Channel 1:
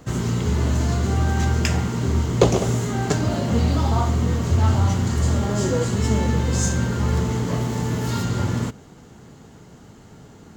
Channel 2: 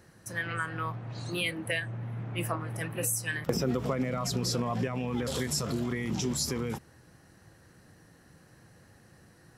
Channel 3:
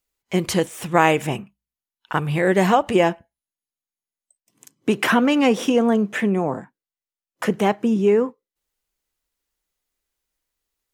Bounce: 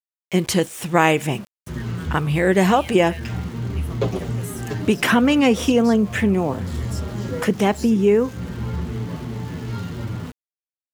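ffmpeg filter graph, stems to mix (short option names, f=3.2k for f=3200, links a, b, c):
-filter_complex "[0:a]lowpass=3.4k,asplit=2[a][b];[b]adelay=7.4,afreqshift=-2.8[c];[a][c]amix=inputs=2:normalize=1,adelay=1600,volume=-1.5dB[d];[1:a]adelay=1400,volume=-7dB[e];[2:a]volume=3dB,asplit=2[f][g];[g]apad=whole_len=536628[h];[d][h]sidechaincompress=threshold=-26dB:ratio=8:attack=31:release=212[i];[i][e][f]amix=inputs=3:normalize=0,equalizer=f=850:t=o:w=2.4:g=-4,aeval=exprs='val(0)*gte(abs(val(0)),0.0126)':c=same"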